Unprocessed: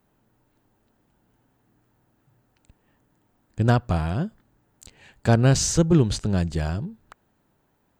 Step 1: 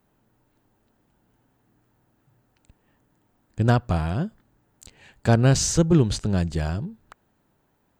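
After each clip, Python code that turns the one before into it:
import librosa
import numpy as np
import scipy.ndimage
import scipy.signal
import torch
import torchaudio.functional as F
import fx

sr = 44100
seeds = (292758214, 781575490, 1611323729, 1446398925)

y = x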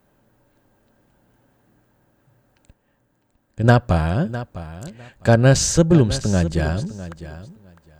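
y = fx.small_body(x, sr, hz=(560.0, 1600.0), ring_ms=45, db=8)
y = fx.tremolo_random(y, sr, seeds[0], hz=1.1, depth_pct=55)
y = fx.echo_feedback(y, sr, ms=655, feedback_pct=17, wet_db=-14.5)
y = y * librosa.db_to_amplitude(5.5)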